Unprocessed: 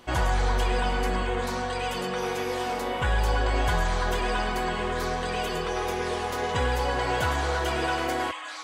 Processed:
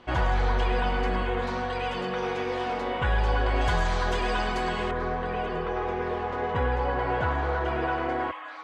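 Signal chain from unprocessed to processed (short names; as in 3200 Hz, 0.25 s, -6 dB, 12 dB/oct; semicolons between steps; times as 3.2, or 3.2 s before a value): LPF 3400 Hz 12 dB/oct, from 3.61 s 6300 Hz, from 4.91 s 1800 Hz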